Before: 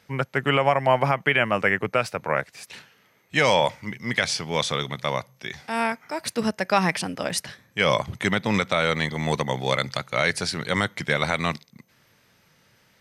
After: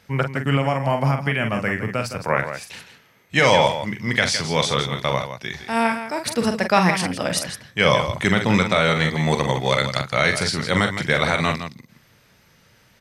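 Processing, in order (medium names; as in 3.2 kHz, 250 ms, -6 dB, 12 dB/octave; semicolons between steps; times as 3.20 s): time-frequency box 0.32–2.18 s, 300–4200 Hz -7 dB; bass shelf 79 Hz +9.5 dB; loudspeakers at several distances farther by 15 m -7 dB, 56 m -10 dB; trim +3 dB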